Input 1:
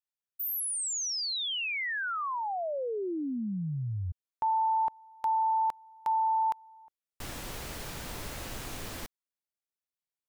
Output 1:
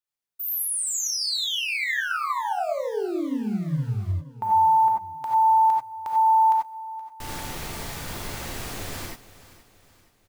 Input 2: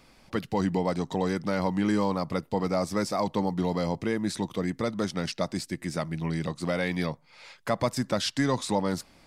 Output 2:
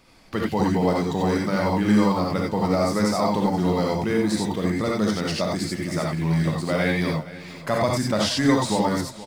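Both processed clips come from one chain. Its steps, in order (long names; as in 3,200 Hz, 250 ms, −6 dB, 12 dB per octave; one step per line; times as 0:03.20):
in parallel at −11 dB: bit reduction 7 bits
on the sum: repeating echo 473 ms, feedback 44%, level −17 dB
reverb whose tail is shaped and stops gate 110 ms rising, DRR −1.5 dB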